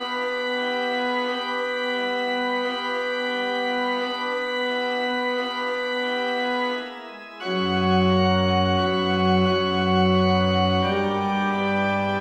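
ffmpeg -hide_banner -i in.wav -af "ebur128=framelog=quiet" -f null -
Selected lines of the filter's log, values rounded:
Integrated loudness:
  I:         -22.7 LUFS
  Threshold: -32.9 LUFS
Loudness range:
  LRA:         4.6 LU
  Threshold: -42.9 LUFS
  LRA low:   -24.9 LUFS
  LRA high:  -20.3 LUFS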